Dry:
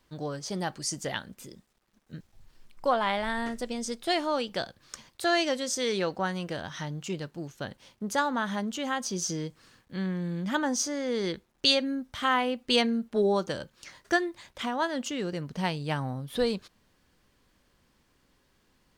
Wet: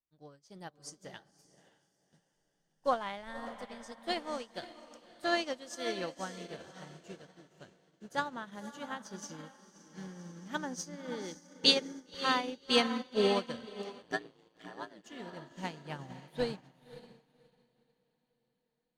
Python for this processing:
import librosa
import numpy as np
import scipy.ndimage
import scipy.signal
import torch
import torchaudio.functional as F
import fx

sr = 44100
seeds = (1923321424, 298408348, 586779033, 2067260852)

y = fx.echo_diffused(x, sr, ms=557, feedback_pct=56, wet_db=-5.5)
y = fx.ring_mod(y, sr, carrier_hz=56.0, at=(14.02, 15.04))
y = fx.upward_expand(y, sr, threshold_db=-42.0, expansion=2.5)